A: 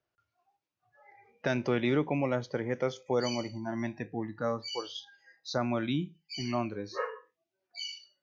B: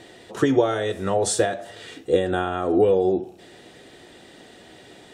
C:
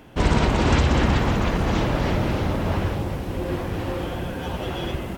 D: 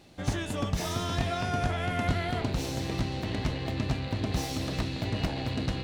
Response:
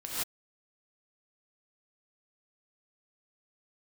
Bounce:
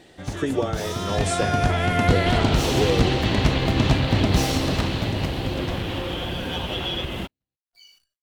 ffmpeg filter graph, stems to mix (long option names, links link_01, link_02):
-filter_complex "[0:a]acrusher=bits=9:dc=4:mix=0:aa=0.000001,volume=-12dB[link_01];[1:a]volume=-6dB[link_02];[2:a]equalizer=frequency=3300:width_type=o:width=0.86:gain=12.5,acompressor=threshold=-26dB:ratio=6,adelay=2100,volume=2dB[link_03];[3:a]dynaudnorm=framelen=280:gausssize=9:maxgain=12.5dB,volume=-1.5dB,asplit=2[link_04][link_05];[link_05]volume=-21dB,aecho=0:1:247|494|741|988|1235|1482|1729:1|0.49|0.24|0.118|0.0576|0.0282|0.0138[link_06];[link_01][link_02][link_03][link_04][link_06]amix=inputs=5:normalize=0"